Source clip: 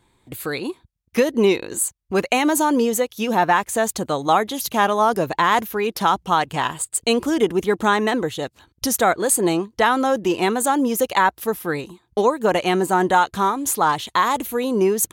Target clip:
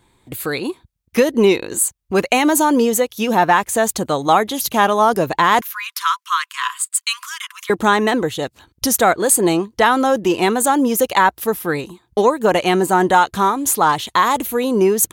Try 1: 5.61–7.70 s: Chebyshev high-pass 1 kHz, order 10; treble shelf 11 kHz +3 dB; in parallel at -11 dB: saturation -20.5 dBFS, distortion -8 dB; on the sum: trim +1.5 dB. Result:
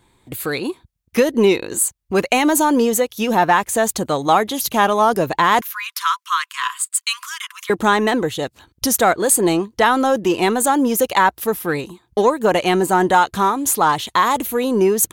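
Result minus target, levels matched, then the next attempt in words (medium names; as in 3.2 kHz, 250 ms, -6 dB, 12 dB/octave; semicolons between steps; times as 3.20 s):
saturation: distortion +11 dB
5.61–7.70 s: Chebyshev high-pass 1 kHz, order 10; treble shelf 11 kHz +3 dB; in parallel at -11 dB: saturation -9.5 dBFS, distortion -19 dB; on the sum: trim +1.5 dB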